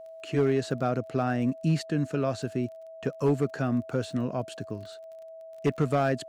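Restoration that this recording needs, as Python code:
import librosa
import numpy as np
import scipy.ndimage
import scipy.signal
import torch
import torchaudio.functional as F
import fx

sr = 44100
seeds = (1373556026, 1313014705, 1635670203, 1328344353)

y = fx.fix_declip(x, sr, threshold_db=-17.0)
y = fx.fix_declick_ar(y, sr, threshold=6.5)
y = fx.notch(y, sr, hz=650.0, q=30.0)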